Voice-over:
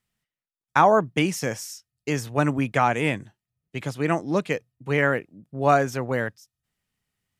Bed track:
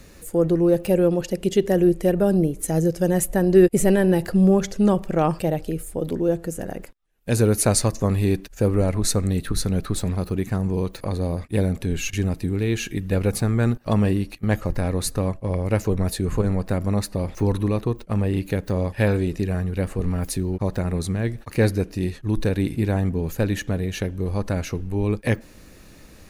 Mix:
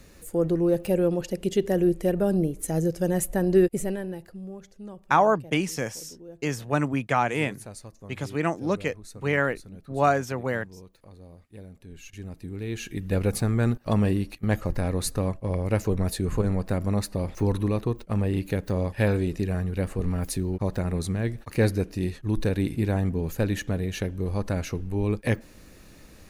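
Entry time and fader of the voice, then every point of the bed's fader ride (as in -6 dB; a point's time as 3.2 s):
4.35 s, -2.5 dB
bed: 3.56 s -4.5 dB
4.42 s -23 dB
11.71 s -23 dB
13.15 s -3 dB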